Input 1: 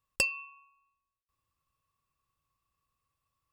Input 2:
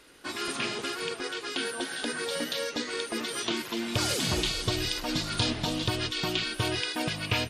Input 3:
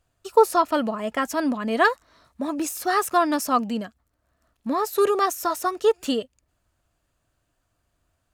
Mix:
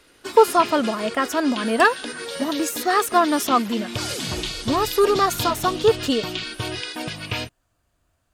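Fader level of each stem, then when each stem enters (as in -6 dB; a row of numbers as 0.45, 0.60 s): -4.0, +0.5, +2.5 dB; 1.60, 0.00, 0.00 s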